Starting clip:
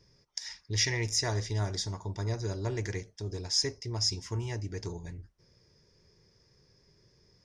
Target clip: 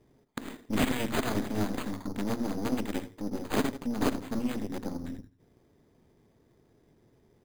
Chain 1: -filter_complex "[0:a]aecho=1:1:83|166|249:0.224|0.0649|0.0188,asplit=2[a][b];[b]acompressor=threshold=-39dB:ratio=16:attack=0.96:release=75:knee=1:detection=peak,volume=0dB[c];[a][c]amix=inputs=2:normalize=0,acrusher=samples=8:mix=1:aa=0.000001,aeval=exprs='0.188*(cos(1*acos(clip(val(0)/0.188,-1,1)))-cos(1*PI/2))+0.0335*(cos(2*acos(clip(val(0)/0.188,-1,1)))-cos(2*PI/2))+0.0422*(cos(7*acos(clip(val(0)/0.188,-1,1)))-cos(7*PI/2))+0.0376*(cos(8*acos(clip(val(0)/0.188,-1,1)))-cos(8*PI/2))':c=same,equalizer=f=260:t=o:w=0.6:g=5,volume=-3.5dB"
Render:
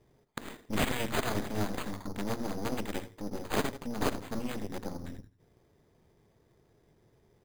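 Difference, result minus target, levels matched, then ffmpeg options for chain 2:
250 Hz band -2.5 dB
-filter_complex "[0:a]aecho=1:1:83|166|249:0.224|0.0649|0.0188,asplit=2[a][b];[b]acompressor=threshold=-39dB:ratio=16:attack=0.96:release=75:knee=1:detection=peak,volume=0dB[c];[a][c]amix=inputs=2:normalize=0,acrusher=samples=8:mix=1:aa=0.000001,aeval=exprs='0.188*(cos(1*acos(clip(val(0)/0.188,-1,1)))-cos(1*PI/2))+0.0335*(cos(2*acos(clip(val(0)/0.188,-1,1)))-cos(2*PI/2))+0.0422*(cos(7*acos(clip(val(0)/0.188,-1,1)))-cos(7*PI/2))+0.0376*(cos(8*acos(clip(val(0)/0.188,-1,1)))-cos(8*PI/2))':c=same,equalizer=f=260:t=o:w=0.6:g=13,volume=-3.5dB"

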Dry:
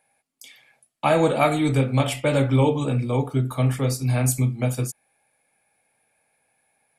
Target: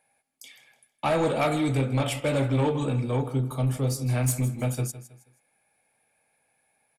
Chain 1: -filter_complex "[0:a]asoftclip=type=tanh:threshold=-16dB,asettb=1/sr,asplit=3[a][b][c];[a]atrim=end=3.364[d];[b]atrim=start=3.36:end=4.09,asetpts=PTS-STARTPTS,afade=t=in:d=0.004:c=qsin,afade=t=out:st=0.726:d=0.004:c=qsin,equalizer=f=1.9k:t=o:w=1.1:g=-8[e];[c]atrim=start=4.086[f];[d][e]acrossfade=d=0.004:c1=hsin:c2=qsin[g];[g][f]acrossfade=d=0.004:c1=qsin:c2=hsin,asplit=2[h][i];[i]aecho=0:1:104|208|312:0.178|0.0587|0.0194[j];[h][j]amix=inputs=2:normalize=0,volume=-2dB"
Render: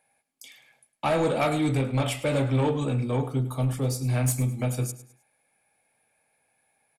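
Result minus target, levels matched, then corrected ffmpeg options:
echo 56 ms early
-filter_complex "[0:a]asoftclip=type=tanh:threshold=-16dB,asettb=1/sr,asplit=3[a][b][c];[a]atrim=end=3.364[d];[b]atrim=start=3.36:end=4.09,asetpts=PTS-STARTPTS,afade=t=in:d=0.004:c=qsin,afade=t=out:st=0.726:d=0.004:c=qsin,equalizer=f=1.9k:t=o:w=1.1:g=-8[e];[c]atrim=start=4.086[f];[d][e]acrossfade=d=0.004:c1=hsin:c2=qsin[g];[g][f]acrossfade=d=0.004:c1=qsin:c2=hsin,asplit=2[h][i];[i]aecho=0:1:160|320|480:0.178|0.0587|0.0194[j];[h][j]amix=inputs=2:normalize=0,volume=-2dB"

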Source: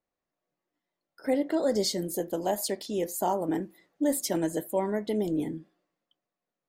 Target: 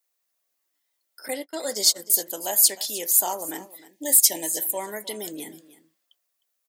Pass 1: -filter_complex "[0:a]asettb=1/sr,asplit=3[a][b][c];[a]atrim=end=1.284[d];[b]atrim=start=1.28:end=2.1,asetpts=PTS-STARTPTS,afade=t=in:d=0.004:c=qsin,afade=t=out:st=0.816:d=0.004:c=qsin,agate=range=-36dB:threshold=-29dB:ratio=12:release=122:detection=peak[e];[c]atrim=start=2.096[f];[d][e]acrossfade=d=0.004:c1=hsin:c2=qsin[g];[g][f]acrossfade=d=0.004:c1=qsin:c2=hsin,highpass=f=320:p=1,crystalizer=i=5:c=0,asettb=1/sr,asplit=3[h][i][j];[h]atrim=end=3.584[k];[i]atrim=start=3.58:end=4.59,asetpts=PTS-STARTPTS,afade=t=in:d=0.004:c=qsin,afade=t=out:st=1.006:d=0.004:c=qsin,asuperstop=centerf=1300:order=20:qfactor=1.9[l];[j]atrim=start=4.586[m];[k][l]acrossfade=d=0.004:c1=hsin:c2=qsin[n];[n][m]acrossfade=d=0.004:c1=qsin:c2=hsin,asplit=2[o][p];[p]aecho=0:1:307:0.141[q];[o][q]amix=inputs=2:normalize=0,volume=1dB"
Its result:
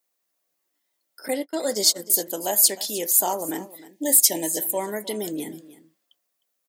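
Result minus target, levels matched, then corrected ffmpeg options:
250 Hz band +7.5 dB
-filter_complex "[0:a]asettb=1/sr,asplit=3[a][b][c];[a]atrim=end=1.284[d];[b]atrim=start=1.28:end=2.1,asetpts=PTS-STARTPTS,afade=t=in:d=0.004:c=qsin,afade=t=out:st=0.816:d=0.004:c=qsin,agate=range=-36dB:threshold=-29dB:ratio=12:release=122:detection=peak[e];[c]atrim=start=2.096[f];[d][e]acrossfade=d=0.004:c1=hsin:c2=qsin[g];[g][f]acrossfade=d=0.004:c1=qsin:c2=hsin,highpass=f=940:p=1,crystalizer=i=5:c=0,asettb=1/sr,asplit=3[h][i][j];[h]atrim=end=3.584[k];[i]atrim=start=3.58:end=4.59,asetpts=PTS-STARTPTS,afade=t=in:d=0.004:c=qsin,afade=t=out:st=1.006:d=0.004:c=qsin,asuperstop=centerf=1300:order=20:qfactor=1.9[l];[j]atrim=start=4.586[m];[k][l]acrossfade=d=0.004:c1=hsin:c2=qsin[n];[n][m]acrossfade=d=0.004:c1=qsin:c2=hsin,asplit=2[o][p];[p]aecho=0:1:307:0.141[q];[o][q]amix=inputs=2:normalize=0,volume=1dB"

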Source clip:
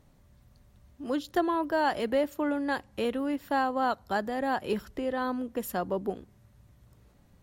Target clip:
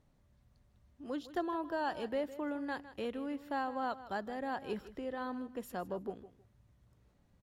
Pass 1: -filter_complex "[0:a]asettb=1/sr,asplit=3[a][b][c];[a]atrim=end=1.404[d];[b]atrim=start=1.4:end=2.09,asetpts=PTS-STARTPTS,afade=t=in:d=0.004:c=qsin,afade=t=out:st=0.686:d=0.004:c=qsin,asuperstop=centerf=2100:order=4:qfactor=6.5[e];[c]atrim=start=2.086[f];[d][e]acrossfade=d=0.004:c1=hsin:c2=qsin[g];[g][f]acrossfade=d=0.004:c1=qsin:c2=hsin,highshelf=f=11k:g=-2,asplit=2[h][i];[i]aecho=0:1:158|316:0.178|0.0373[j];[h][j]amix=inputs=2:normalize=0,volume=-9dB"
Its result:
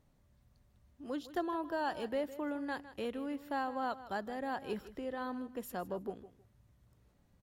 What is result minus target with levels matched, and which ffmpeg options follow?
8000 Hz band +3.0 dB
-filter_complex "[0:a]asettb=1/sr,asplit=3[a][b][c];[a]atrim=end=1.404[d];[b]atrim=start=1.4:end=2.09,asetpts=PTS-STARTPTS,afade=t=in:d=0.004:c=qsin,afade=t=out:st=0.686:d=0.004:c=qsin,asuperstop=centerf=2100:order=4:qfactor=6.5[e];[c]atrim=start=2.086[f];[d][e]acrossfade=d=0.004:c1=hsin:c2=qsin[g];[g][f]acrossfade=d=0.004:c1=qsin:c2=hsin,highshelf=f=11k:g=-11,asplit=2[h][i];[i]aecho=0:1:158|316:0.178|0.0373[j];[h][j]amix=inputs=2:normalize=0,volume=-9dB"

